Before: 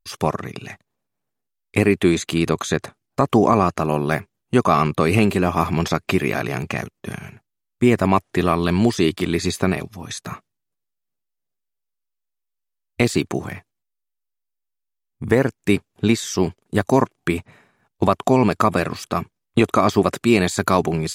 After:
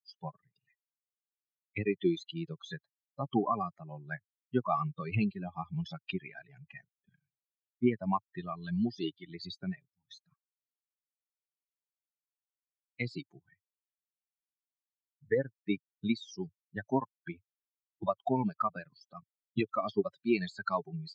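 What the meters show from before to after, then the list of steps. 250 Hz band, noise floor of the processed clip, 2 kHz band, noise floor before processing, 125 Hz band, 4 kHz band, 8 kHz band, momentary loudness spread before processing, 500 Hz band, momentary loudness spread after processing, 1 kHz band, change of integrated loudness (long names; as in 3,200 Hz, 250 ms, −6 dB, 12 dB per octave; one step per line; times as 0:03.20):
−15.0 dB, below −85 dBFS, −17.0 dB, −79 dBFS, −16.5 dB, −17.0 dB, below −30 dB, 14 LU, −16.0 dB, 16 LU, −15.0 dB, −15.0 dB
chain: spectral dynamics exaggerated over time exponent 3
elliptic band-pass filter 110–4,500 Hz, stop band 40 dB
level −7 dB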